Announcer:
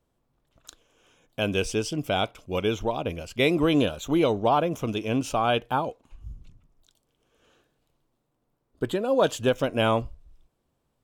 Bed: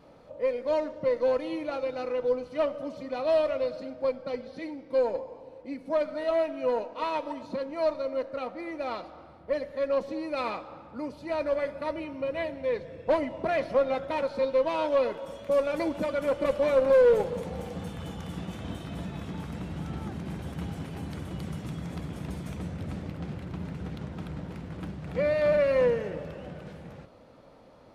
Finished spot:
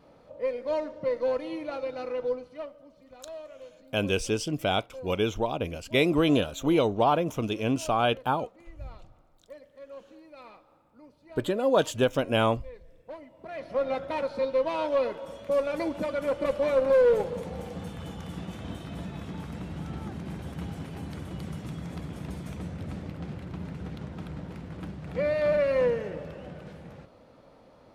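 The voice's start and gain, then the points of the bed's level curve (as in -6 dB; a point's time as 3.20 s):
2.55 s, -1.0 dB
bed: 2.27 s -2 dB
2.84 s -17.5 dB
13.35 s -17.5 dB
13.87 s -1 dB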